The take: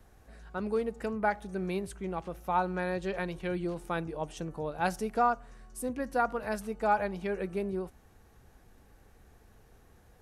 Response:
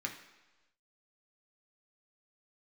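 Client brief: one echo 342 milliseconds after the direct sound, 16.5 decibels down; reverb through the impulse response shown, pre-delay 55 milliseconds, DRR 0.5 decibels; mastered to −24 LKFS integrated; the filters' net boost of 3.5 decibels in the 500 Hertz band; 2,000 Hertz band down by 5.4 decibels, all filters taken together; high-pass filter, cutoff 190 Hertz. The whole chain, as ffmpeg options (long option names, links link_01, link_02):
-filter_complex "[0:a]highpass=190,equalizer=frequency=500:width_type=o:gain=5,equalizer=frequency=2000:width_type=o:gain=-9,aecho=1:1:342:0.15,asplit=2[link_01][link_02];[1:a]atrim=start_sample=2205,adelay=55[link_03];[link_02][link_03]afir=irnorm=-1:irlink=0,volume=-2.5dB[link_04];[link_01][link_04]amix=inputs=2:normalize=0,volume=6.5dB"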